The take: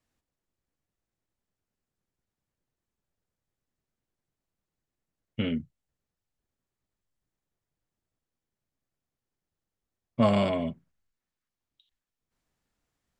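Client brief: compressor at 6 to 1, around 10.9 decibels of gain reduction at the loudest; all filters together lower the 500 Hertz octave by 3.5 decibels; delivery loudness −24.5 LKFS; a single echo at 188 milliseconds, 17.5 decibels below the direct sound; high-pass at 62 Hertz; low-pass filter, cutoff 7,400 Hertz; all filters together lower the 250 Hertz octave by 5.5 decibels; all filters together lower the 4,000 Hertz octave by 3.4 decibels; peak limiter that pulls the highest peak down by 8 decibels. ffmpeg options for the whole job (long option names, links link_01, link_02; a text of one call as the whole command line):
ffmpeg -i in.wav -af "highpass=62,lowpass=7400,equalizer=frequency=250:width_type=o:gain=-6,equalizer=frequency=500:width_type=o:gain=-3.5,equalizer=frequency=4000:width_type=o:gain=-5,acompressor=threshold=-33dB:ratio=6,alimiter=level_in=6.5dB:limit=-24dB:level=0:latency=1,volume=-6.5dB,aecho=1:1:188:0.133,volume=18.5dB" out.wav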